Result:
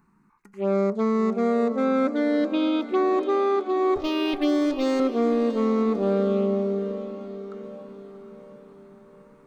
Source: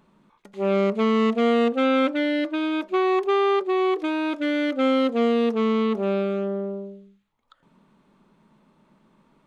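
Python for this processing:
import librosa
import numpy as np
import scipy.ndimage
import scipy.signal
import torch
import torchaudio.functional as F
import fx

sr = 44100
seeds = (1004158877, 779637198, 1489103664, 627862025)

y = fx.lower_of_two(x, sr, delay_ms=7.1, at=(3.96, 5.0))
y = fx.env_phaser(y, sr, low_hz=570.0, high_hz=3000.0, full_db=-18.5)
y = fx.rider(y, sr, range_db=10, speed_s=0.5)
y = fx.echo_diffused(y, sr, ms=692, feedback_pct=50, wet_db=-11.5)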